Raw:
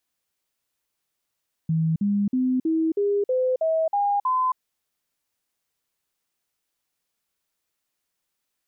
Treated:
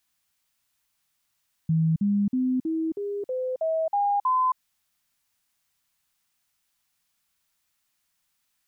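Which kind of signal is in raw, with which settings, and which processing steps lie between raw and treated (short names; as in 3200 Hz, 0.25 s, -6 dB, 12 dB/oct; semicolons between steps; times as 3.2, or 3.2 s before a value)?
stepped sine 161 Hz up, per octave 3, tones 9, 0.27 s, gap 0.05 s -19 dBFS
bell 430 Hz -14 dB 0.93 oct; in parallel at -1.5 dB: limiter -32.5 dBFS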